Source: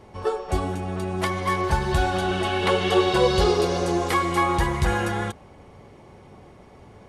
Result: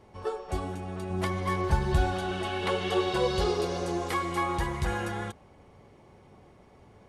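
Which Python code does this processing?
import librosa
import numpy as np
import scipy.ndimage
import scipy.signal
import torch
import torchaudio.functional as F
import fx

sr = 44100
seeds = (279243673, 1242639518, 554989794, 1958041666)

y = fx.low_shelf(x, sr, hz=370.0, db=6.5, at=(1.1, 2.14))
y = F.gain(torch.from_numpy(y), -7.5).numpy()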